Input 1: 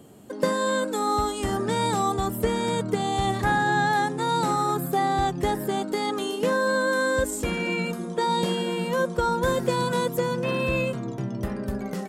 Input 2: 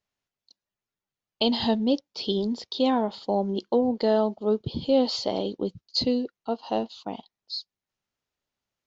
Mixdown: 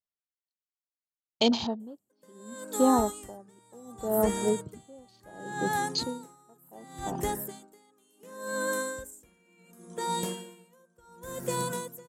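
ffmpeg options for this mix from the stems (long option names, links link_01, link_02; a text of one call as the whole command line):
ffmpeg -i stem1.wav -i stem2.wav -filter_complex "[0:a]bandreject=frequency=78.33:width_type=h:width=4,bandreject=frequency=156.66:width_type=h:width=4,bandreject=frequency=234.99:width_type=h:width=4,bandreject=frequency=313.32:width_type=h:width=4,bandreject=frequency=391.65:width_type=h:width=4,bandreject=frequency=469.98:width_type=h:width=4,bandreject=frequency=548.31:width_type=h:width=4,bandreject=frequency=626.64:width_type=h:width=4,bandreject=frequency=704.97:width_type=h:width=4,bandreject=frequency=783.3:width_type=h:width=4,bandreject=frequency=861.63:width_type=h:width=4,bandreject=frequency=939.96:width_type=h:width=4,bandreject=frequency=1018.29:width_type=h:width=4,bandreject=frequency=1096.62:width_type=h:width=4,bandreject=frequency=1174.95:width_type=h:width=4,bandreject=frequency=1253.28:width_type=h:width=4,bandreject=frequency=1331.61:width_type=h:width=4,bandreject=frequency=1409.94:width_type=h:width=4,bandreject=frequency=1488.27:width_type=h:width=4,bandreject=frequency=1566.6:width_type=h:width=4,aexciter=amount=3.3:drive=6.9:freq=6100,adelay=1800,volume=-6dB[link_01];[1:a]afwtdn=0.0316,volume=0.5dB[link_02];[link_01][link_02]amix=inputs=2:normalize=0,aeval=exprs='val(0)*pow(10,-32*(0.5-0.5*cos(2*PI*0.69*n/s))/20)':channel_layout=same" out.wav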